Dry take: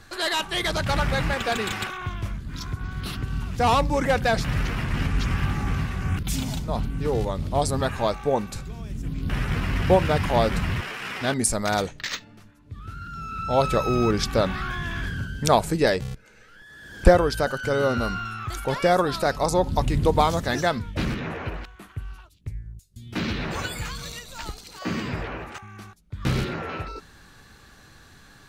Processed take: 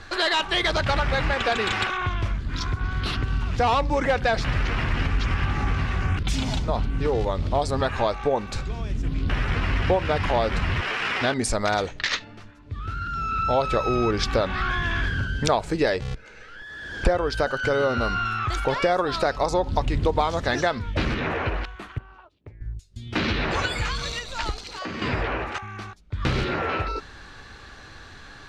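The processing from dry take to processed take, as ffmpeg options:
-filter_complex "[0:a]asettb=1/sr,asplit=3[a][b][c];[a]atrim=end=21.984[d];[b]atrim=start=21.98:end=22.61,asetpts=PTS-STARTPTS,afade=t=in:d=0.004:c=qsin,afade=t=out:st=0.626:d=0.004:c=qsin,bandpass=f=580:t=q:w=1[e];[c]atrim=start=22.606[f];[d][e]acrossfade=d=0.004:c1=hsin:c2=qsin[g];[g][f]acrossfade=d=0.004:c1=qsin:c2=hsin,asettb=1/sr,asplit=3[h][i][j];[h]atrim=end=24.624[k];[i]atrim=start=24.62:end=25.02,asetpts=PTS-STARTPTS,afade=t=in:d=0.004:c=qsin,afade=t=out:st=0.396:d=0.004:c=qsin,acompressor=threshold=-37dB:ratio=3:attack=3.2:release=140:knee=1:detection=peak[l];[j]atrim=start=25.016[m];[k][l]acrossfade=d=0.004:c1=hsin:c2=qsin[n];[n][m]acrossfade=d=0.004:c1=qsin:c2=hsin,lowpass=4.9k,equalizer=f=170:t=o:w=1.2:g=-7.5,acompressor=threshold=-29dB:ratio=3,volume=8dB"

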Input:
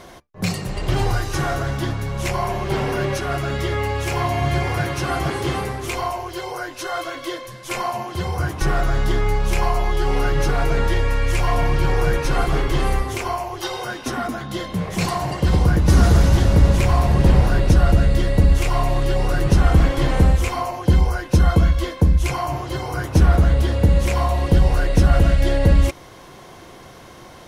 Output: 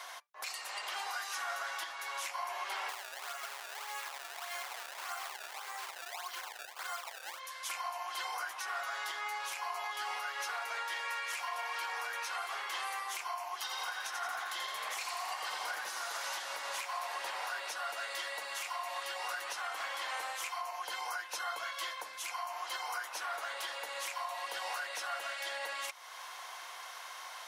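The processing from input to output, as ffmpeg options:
-filter_complex "[0:a]asplit=3[a][b][c];[a]afade=t=out:st=2.88:d=0.02[d];[b]acrusher=samples=24:mix=1:aa=0.000001:lfo=1:lforange=38.4:lforate=1.7,afade=t=in:st=2.88:d=0.02,afade=t=out:st=7.38:d=0.02[e];[c]afade=t=in:st=7.38:d=0.02[f];[d][e][f]amix=inputs=3:normalize=0,asettb=1/sr,asplit=3[g][h][i];[g]atrim=end=13.584[j];[h]atrim=start=13.58:end=16.04,asetpts=PTS-STARTPTS,afade=t=in:d=0.004:c=qsin,afade=t=out:st=2.456:d=0.004:c=qsin,asplit=7[k][l][m][n][o][p][q];[l]adelay=84,afreqshift=40,volume=-4dB[r];[m]adelay=168,afreqshift=80,volume=-10dB[s];[n]adelay=252,afreqshift=120,volume=-16dB[t];[o]adelay=336,afreqshift=160,volume=-22.1dB[u];[p]adelay=420,afreqshift=200,volume=-28.1dB[v];[q]adelay=504,afreqshift=240,volume=-34.1dB[w];[k][r][s][t][u][v][w]amix=inputs=7:normalize=0,atrim=end_sample=108486[x];[i]atrim=start=16.036[y];[j][x]acrossfade=d=0.004:c1=hsin:c2=qsin[z];[z][y]acrossfade=d=0.004:c1=qsin:c2=hsin,highpass=f=860:w=0.5412,highpass=f=860:w=1.3066,acompressor=threshold=-39dB:ratio=1.5,alimiter=level_in=4.5dB:limit=-24dB:level=0:latency=1:release=318,volume=-4.5dB"

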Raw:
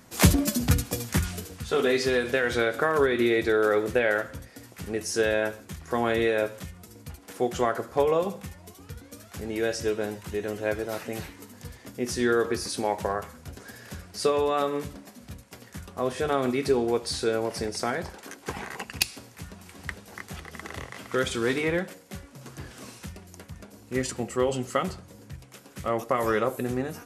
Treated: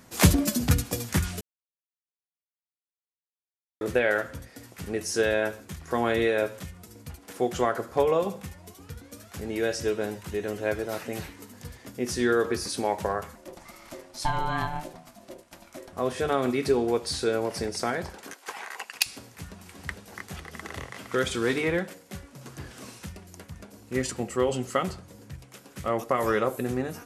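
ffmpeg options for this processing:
-filter_complex "[0:a]asettb=1/sr,asplit=3[a][b][c];[a]atrim=end=13.354[d];[b]atrim=start=13.35:end=15.93,asetpts=PTS-STARTPTS,afade=t=in:d=0.004:c=qsin,afade=t=out:st=2.576:d=0.004:c=qsin,aeval=exprs='val(0)*sin(2*PI*450*n/s)':c=same[e];[c]atrim=start=15.926[f];[d][e]acrossfade=d=0.004:c1=hsin:c2=qsin[g];[g][f]acrossfade=d=0.004:c1=qsin:c2=hsin,asettb=1/sr,asplit=3[h][i][j];[h]atrim=end=18.334[k];[i]atrim=start=18.33:end=19.06,asetpts=PTS-STARTPTS,afade=t=in:d=0.004:c=qsin,afade=t=out:st=0.726:d=0.004:c=qsin,highpass=690[l];[j]atrim=start=19.056[m];[k][l]acrossfade=d=0.004:c1=hsin:c2=qsin[n];[n][m]acrossfade=d=0.004:c1=qsin:c2=hsin,asplit=3[o][p][q];[o]atrim=end=1.41,asetpts=PTS-STARTPTS,afade=t=out:st=1.406:d=0.004:c=hsin[r];[p]atrim=start=1.41:end=3.81,asetpts=PTS-STARTPTS,volume=0[s];[q]atrim=start=3.81,asetpts=PTS-STARTPTS,afade=t=in:d=0.004:c=hsin[t];[r][s][t]concat=n=3:v=0:a=1"

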